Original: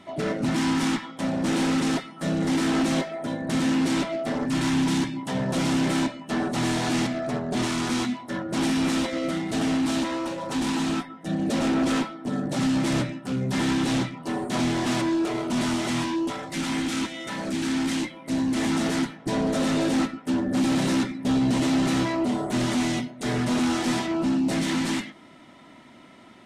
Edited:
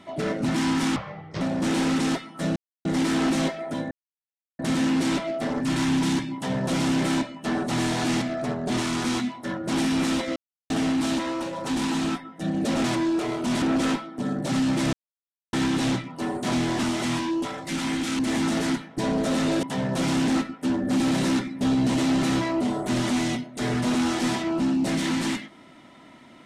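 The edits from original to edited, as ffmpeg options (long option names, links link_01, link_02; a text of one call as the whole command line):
ffmpeg -i in.wav -filter_complex "[0:a]asplit=15[link_01][link_02][link_03][link_04][link_05][link_06][link_07][link_08][link_09][link_10][link_11][link_12][link_13][link_14][link_15];[link_01]atrim=end=0.964[link_16];[link_02]atrim=start=0.96:end=1.23,asetpts=PTS-STARTPTS,asetrate=26460,aresample=44100[link_17];[link_03]atrim=start=1.226:end=2.38,asetpts=PTS-STARTPTS,afade=type=out:start_time=1.15:duration=0.004:curve=hsin,apad=pad_dur=0.29[link_18];[link_04]atrim=start=2.38:end=3.44,asetpts=PTS-STARTPTS,afade=type=in:duration=0.004:curve=hsin,afade=type=out:start_time=1.056:duration=0.004:curve=hsin,apad=pad_dur=0.68[link_19];[link_05]atrim=start=3.44:end=9.21,asetpts=PTS-STARTPTS,afade=type=in:duration=0.004:curve=hsin,afade=type=out:start_time=5.766:duration=0.004:curve=hsin[link_20];[link_06]atrim=start=9.21:end=9.55,asetpts=PTS-STARTPTS,volume=0[link_21];[link_07]atrim=start=9.55:end=11.692,asetpts=PTS-STARTPTS,afade=type=in:duration=0.004:curve=hsin[link_22];[link_08]atrim=start=14.898:end=15.682[link_23];[link_09]atrim=start=11.688:end=13,asetpts=PTS-STARTPTS,afade=type=out:start_time=1.308:duration=0.004:curve=hsin[link_24];[link_10]atrim=start=13:end=13.6,asetpts=PTS-STARTPTS,volume=0[link_25];[link_11]atrim=start=13.6:end=14.902,asetpts=PTS-STARTPTS,afade=type=in:duration=0.004:curve=hsin[link_26];[link_12]atrim=start=15.678:end=17.042[link_27];[link_13]atrim=start=18.478:end=19.922[link_28];[link_14]atrim=start=5.198:end=5.852[link_29];[link_15]atrim=start=19.918[link_30];[link_16][link_17]acrossfade=duration=0.004:curve1=hsin:curve2=hsin[link_31];[link_18][link_19][link_20][link_21][link_22]concat=n=5:v=0:a=1[link_32];[link_31][link_32]acrossfade=duration=0.004:curve1=hsin:curve2=hsin[link_33];[link_33][link_23]acrossfade=duration=0.004:curve1=hsin:curve2=hsin[link_34];[link_24][link_25][link_26]concat=n=3:v=0:a=1[link_35];[link_34][link_35]acrossfade=duration=0.004:curve1=hsin:curve2=hsin[link_36];[link_36][link_27]acrossfade=duration=0.004:curve1=hsin:curve2=hsin[link_37];[link_37][link_28]acrossfade=duration=0.004:curve1=hsin:curve2=hsin[link_38];[link_38][link_29]acrossfade=duration=0.004:curve1=hsin:curve2=hsin[link_39];[link_39][link_30]acrossfade=duration=0.004:curve1=hsin:curve2=hsin" out.wav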